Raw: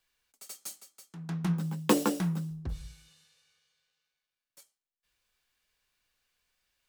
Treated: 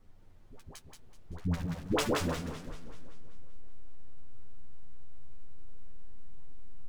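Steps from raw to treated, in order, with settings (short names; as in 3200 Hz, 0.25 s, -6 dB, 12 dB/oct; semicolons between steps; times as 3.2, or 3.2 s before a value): cycle switcher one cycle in 2, muted; LPF 9000 Hz 12 dB/oct; high shelf 4300 Hz +7.5 dB; backlash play -25.5 dBFS; dispersion highs, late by 95 ms, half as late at 590 Hz; added noise brown -58 dBFS; chorus voices 2, 0.31 Hz, delay 10 ms, depth 2.4 ms; echo 0.179 s -5 dB; warbling echo 0.192 s, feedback 56%, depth 201 cents, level -12.5 dB; gain +2.5 dB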